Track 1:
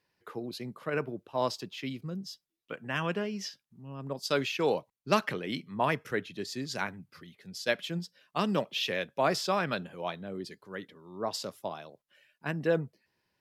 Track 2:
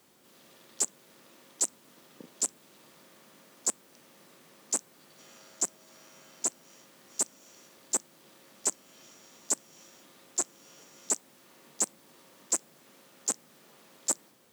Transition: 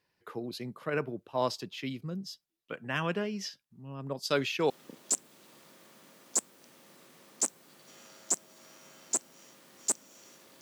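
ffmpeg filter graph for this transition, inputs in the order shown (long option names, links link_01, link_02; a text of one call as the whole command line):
ffmpeg -i cue0.wav -i cue1.wav -filter_complex "[0:a]apad=whole_dur=10.61,atrim=end=10.61,atrim=end=4.702[link_01];[1:a]atrim=start=2.008:end=7.92[link_02];[link_01][link_02]acrossfade=duration=0.004:curve1=hsin:curve2=hsin" out.wav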